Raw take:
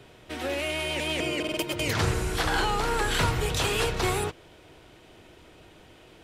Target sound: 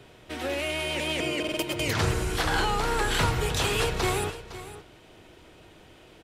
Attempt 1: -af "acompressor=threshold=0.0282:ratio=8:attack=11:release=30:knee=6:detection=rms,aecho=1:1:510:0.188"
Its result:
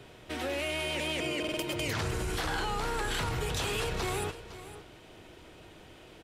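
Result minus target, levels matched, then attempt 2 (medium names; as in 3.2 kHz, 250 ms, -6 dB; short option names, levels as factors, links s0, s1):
compression: peak gain reduction +10 dB
-af "aecho=1:1:510:0.188"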